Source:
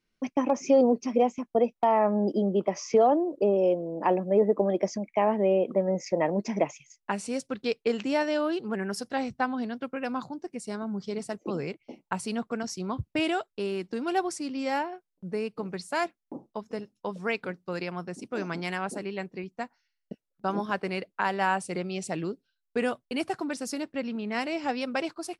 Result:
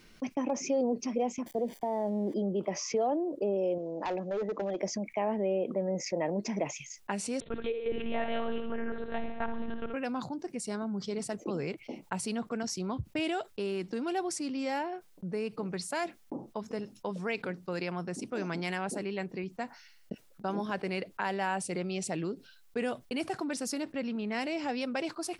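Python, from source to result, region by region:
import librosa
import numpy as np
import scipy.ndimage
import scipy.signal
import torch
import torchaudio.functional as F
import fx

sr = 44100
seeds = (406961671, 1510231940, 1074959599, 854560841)

y = fx.chain(x, sr, fx.crossing_spikes(level_db=-22.0),
    fx.moving_average(points=33),
    fx.doppler_dist(depth_ms=0.1), at=(1.46, 2.34))
y = fx.chain(y, sr, fx.low_shelf(hz=440.0, db=-8.5),
    fx.clip_hard(threshold_db=-24.5),
    fx.resample_bad(factor=3, down='none', up='filtered'), at=(3.78, 4.8))
y = fx.chain(y, sr, fx.echo_feedback(ms=68, feedback_pct=55, wet_db=-9.0),
    fx.lpc_monotone(seeds[0], pitch_hz=230.0, order=10), at=(7.4, 9.94))
y = fx.dynamic_eq(y, sr, hz=1200.0, q=2.2, threshold_db=-41.0, ratio=4.0, max_db=-5)
y = fx.env_flatten(y, sr, amount_pct=50)
y = F.gain(torch.from_numpy(y), -9.0).numpy()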